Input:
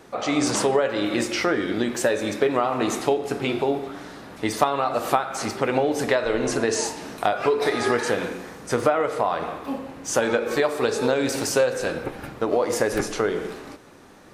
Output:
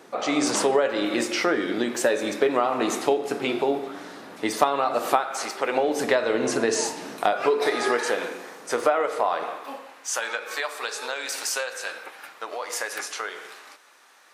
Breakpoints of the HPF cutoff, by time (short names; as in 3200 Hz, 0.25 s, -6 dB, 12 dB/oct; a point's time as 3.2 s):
5.06 s 230 Hz
5.52 s 600 Hz
6.17 s 170 Hz
6.92 s 170 Hz
8.1 s 400 Hz
9.39 s 400 Hz
10.09 s 1100 Hz